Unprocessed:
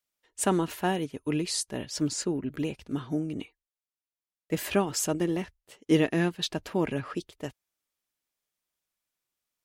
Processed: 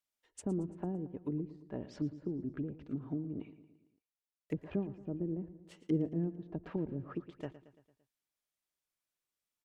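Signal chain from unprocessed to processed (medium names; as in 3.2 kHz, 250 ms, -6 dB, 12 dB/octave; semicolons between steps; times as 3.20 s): low-pass that closes with the level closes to 310 Hz, closed at -26.5 dBFS; on a send: feedback delay 113 ms, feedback 55%, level -15 dB; on the sum: trim -6 dB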